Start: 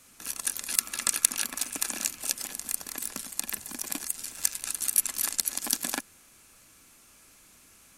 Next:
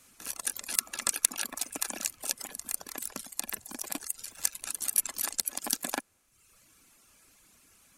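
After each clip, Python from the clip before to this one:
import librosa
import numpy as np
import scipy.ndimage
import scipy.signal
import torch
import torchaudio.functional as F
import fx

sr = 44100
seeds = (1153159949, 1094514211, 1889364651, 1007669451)

y = fx.dereverb_blind(x, sr, rt60_s=0.94)
y = fx.dynamic_eq(y, sr, hz=630.0, q=0.81, threshold_db=-56.0, ratio=4.0, max_db=6)
y = y * librosa.db_to_amplitude(-2.5)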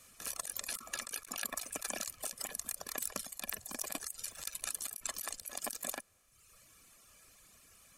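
y = x + 0.43 * np.pad(x, (int(1.7 * sr / 1000.0), 0))[:len(x)]
y = fx.over_compress(y, sr, threshold_db=-36.0, ratio=-1.0)
y = y * librosa.db_to_amplitude(-4.5)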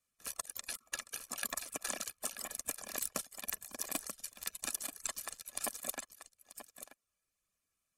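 y = x + 10.0 ** (-4.0 / 20.0) * np.pad(x, (int(935 * sr / 1000.0), 0))[:len(x)]
y = fx.upward_expand(y, sr, threshold_db=-55.0, expansion=2.5)
y = y * librosa.db_to_amplitude(4.5)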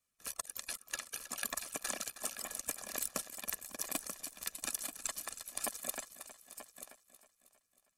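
y = fx.echo_feedback(x, sr, ms=317, feedback_pct=55, wet_db=-13.5)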